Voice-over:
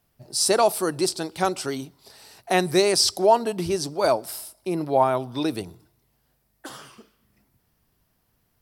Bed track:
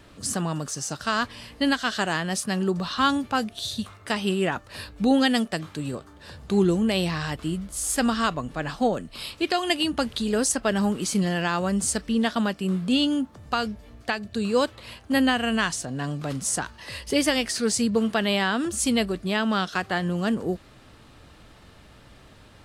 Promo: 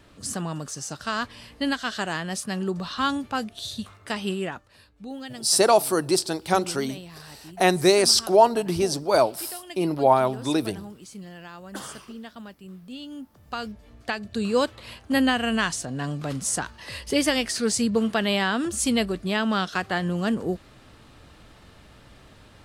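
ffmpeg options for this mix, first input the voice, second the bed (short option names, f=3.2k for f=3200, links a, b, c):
-filter_complex "[0:a]adelay=5100,volume=1.5dB[a];[1:a]volume=14dB,afade=t=out:st=4.3:d=0.47:silence=0.199526,afade=t=in:st=13.05:d=1.35:silence=0.141254[b];[a][b]amix=inputs=2:normalize=0"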